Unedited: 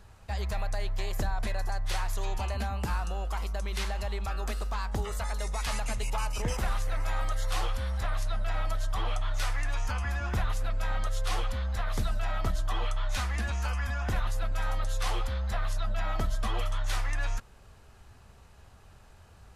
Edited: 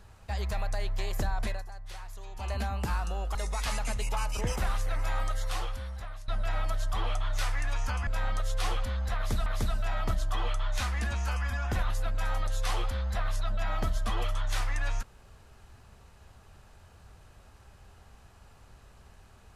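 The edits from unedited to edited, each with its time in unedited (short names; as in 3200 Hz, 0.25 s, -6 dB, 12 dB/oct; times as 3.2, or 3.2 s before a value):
1.48–2.52 dip -12 dB, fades 0.17 s
3.35–5.36 cut
7.22–8.29 fade out, to -16 dB
10.08–10.74 cut
11.83–12.13 loop, 2 plays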